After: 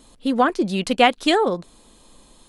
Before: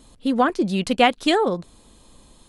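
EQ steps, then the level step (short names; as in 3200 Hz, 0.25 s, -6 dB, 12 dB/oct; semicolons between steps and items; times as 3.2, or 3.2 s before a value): bell 78 Hz -8.5 dB 1.9 oct; +1.5 dB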